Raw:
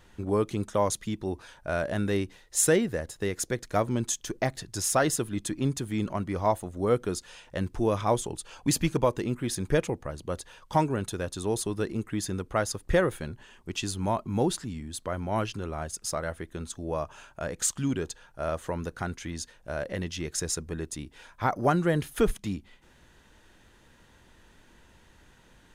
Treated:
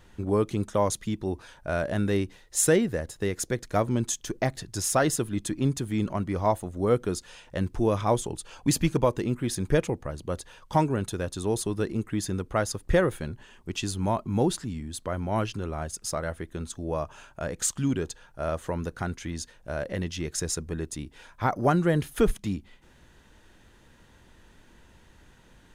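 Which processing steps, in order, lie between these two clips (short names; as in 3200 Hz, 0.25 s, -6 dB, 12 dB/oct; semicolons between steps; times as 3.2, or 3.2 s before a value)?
low shelf 390 Hz +3 dB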